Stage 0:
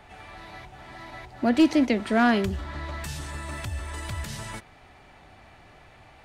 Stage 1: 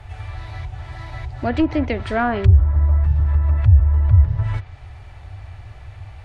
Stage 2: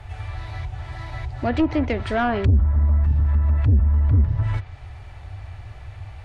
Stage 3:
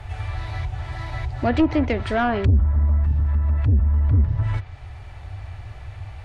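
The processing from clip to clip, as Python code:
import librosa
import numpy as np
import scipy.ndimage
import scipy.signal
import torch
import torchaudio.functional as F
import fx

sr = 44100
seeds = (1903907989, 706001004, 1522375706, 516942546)

y1 = fx.low_shelf_res(x, sr, hz=140.0, db=13.0, q=3.0)
y1 = fx.env_lowpass_down(y1, sr, base_hz=980.0, full_db=-16.0)
y1 = y1 * librosa.db_to_amplitude(3.5)
y2 = 10.0 ** (-11.5 / 20.0) * np.tanh(y1 / 10.0 ** (-11.5 / 20.0))
y3 = fx.rider(y2, sr, range_db=3, speed_s=2.0)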